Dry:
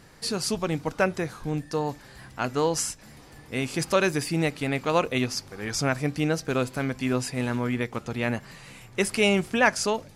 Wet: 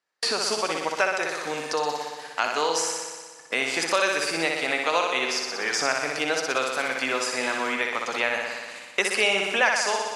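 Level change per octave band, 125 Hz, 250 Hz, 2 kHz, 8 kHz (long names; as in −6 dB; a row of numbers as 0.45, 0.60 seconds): −18.5, −8.5, +5.5, +3.0 decibels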